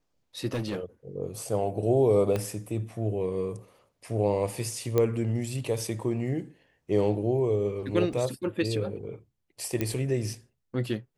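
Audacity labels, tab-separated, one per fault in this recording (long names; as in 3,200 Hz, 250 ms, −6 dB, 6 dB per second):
0.530000	0.800000	clipping −26 dBFS
2.360000	2.360000	click −16 dBFS
4.980000	4.980000	click −12 dBFS
8.130000	8.130000	drop-out 2.4 ms
9.810000	9.810000	click −14 dBFS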